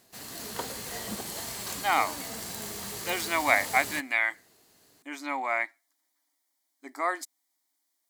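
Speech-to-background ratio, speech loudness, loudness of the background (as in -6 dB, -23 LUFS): 7.0 dB, -28.5 LUFS, -35.5 LUFS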